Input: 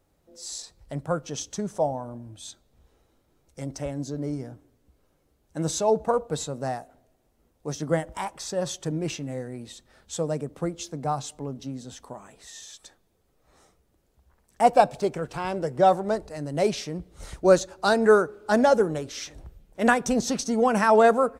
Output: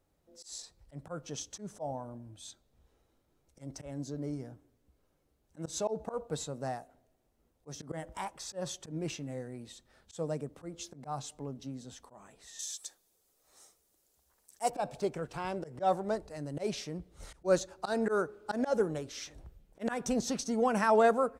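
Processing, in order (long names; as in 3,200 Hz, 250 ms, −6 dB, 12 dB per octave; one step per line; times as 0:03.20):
volume swells 117 ms
0:12.59–0:14.70: bass and treble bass −11 dB, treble +15 dB
level −7 dB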